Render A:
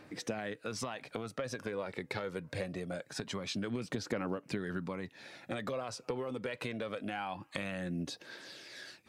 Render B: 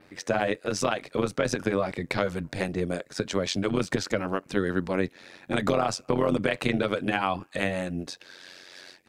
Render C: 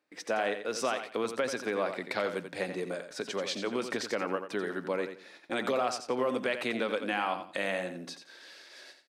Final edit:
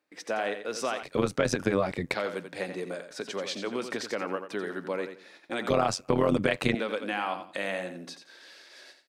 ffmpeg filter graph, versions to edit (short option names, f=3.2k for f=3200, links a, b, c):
-filter_complex "[1:a]asplit=2[a][b];[2:a]asplit=3[c][d][e];[c]atrim=end=1.032[f];[a]atrim=start=1.028:end=2.142[g];[d]atrim=start=2.138:end=5.702[h];[b]atrim=start=5.698:end=6.752[i];[e]atrim=start=6.748[j];[f][g]acrossfade=d=0.004:c1=hsin:c2=hsin[k];[k][h]acrossfade=d=0.004:c1=hsin:c2=hsin[l];[l][i]acrossfade=d=0.004:c1=hsin:c2=hsin[m];[m][j]acrossfade=d=0.004:c1=hsin:c2=hsin"